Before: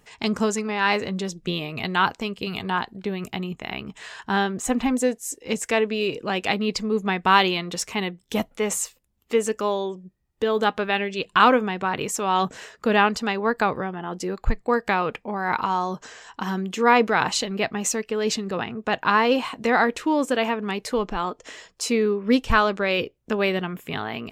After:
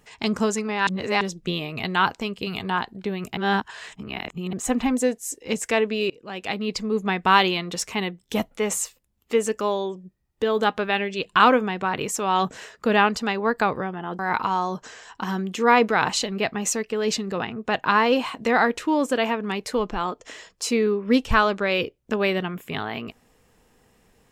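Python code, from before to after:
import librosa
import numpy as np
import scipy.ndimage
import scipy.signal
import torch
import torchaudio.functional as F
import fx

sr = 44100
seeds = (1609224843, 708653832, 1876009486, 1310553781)

y = fx.edit(x, sr, fx.reverse_span(start_s=0.87, length_s=0.34),
    fx.reverse_span(start_s=3.37, length_s=1.16),
    fx.fade_in_from(start_s=6.1, length_s=1.12, curve='qsin', floor_db=-23.0),
    fx.cut(start_s=14.19, length_s=1.19), tone=tone)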